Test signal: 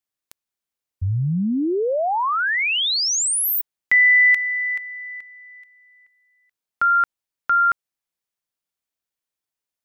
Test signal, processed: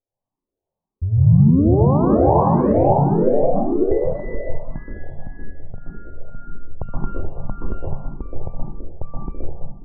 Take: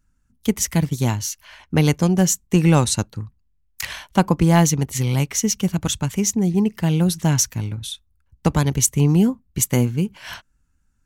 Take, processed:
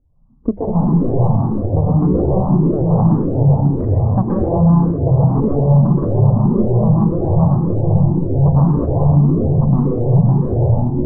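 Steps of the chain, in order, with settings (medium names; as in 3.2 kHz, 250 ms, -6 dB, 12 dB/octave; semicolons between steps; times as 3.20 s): comb filter that takes the minimum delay 0.38 ms; Chebyshev low-pass 1.1 kHz, order 5; hum notches 50/100/150/200 Hz; compression 5:1, threshold -23 dBFS; ever faster or slower copies 101 ms, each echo -3 st, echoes 3; on a send: feedback echo behind a low-pass 207 ms, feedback 33%, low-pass 700 Hz, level -4 dB; on the sum: plate-style reverb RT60 0.76 s, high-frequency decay 0.95×, pre-delay 115 ms, DRR -3.5 dB; loudness maximiser +13 dB; barber-pole phaser +1.8 Hz; trim -2 dB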